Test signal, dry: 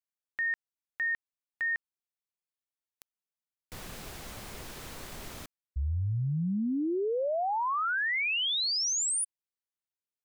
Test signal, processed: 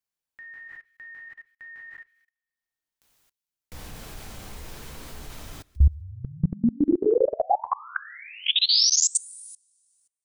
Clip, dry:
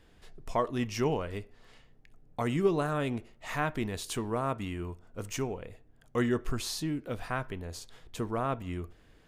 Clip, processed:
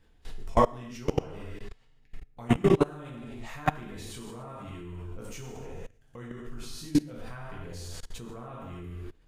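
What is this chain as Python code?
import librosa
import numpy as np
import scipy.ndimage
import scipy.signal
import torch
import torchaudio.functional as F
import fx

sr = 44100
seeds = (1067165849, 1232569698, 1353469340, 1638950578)

p1 = x + fx.echo_wet_highpass(x, sr, ms=150, feedback_pct=46, hz=2700.0, wet_db=-18, dry=0)
p2 = fx.tremolo_shape(p1, sr, shape='triangle', hz=0.6, depth_pct=35)
p3 = fx.hum_notches(p2, sr, base_hz=50, count=2)
p4 = fx.rev_gated(p3, sr, seeds[0], gate_ms=320, shape='falling', drr_db=-5.0)
p5 = fx.level_steps(p4, sr, step_db=24)
p6 = fx.low_shelf(p5, sr, hz=85.0, db=10.0)
y = p6 * 10.0 ** (5.0 / 20.0)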